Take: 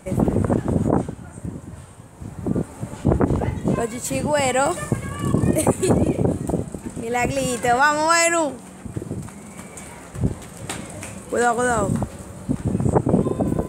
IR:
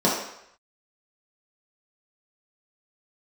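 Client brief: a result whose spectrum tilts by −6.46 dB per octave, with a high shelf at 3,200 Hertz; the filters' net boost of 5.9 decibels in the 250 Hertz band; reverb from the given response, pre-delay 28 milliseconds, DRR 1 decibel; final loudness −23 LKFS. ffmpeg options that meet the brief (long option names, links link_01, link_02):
-filter_complex "[0:a]equalizer=frequency=250:width_type=o:gain=7.5,highshelf=frequency=3200:gain=-6,asplit=2[link_01][link_02];[1:a]atrim=start_sample=2205,adelay=28[link_03];[link_02][link_03]afir=irnorm=-1:irlink=0,volume=-18.5dB[link_04];[link_01][link_04]amix=inputs=2:normalize=0,volume=-9.5dB"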